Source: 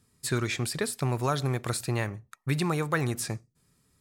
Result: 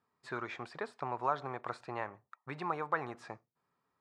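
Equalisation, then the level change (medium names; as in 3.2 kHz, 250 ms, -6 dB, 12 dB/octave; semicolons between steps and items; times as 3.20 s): band-pass filter 940 Hz, Q 1.8; distance through air 71 m; +1.0 dB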